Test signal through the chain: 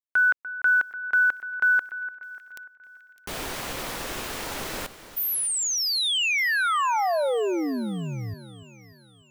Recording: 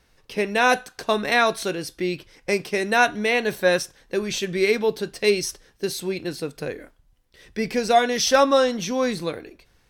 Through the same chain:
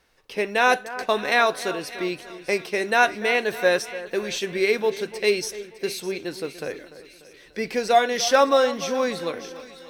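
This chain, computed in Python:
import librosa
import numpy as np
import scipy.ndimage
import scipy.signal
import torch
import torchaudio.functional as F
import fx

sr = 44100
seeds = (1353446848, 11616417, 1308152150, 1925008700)

p1 = fx.bass_treble(x, sr, bass_db=-9, treble_db=-3)
p2 = fx.quant_companded(p1, sr, bits=8)
y = p2 + fx.echo_split(p2, sr, split_hz=2100.0, low_ms=294, high_ms=607, feedback_pct=52, wet_db=-14.5, dry=0)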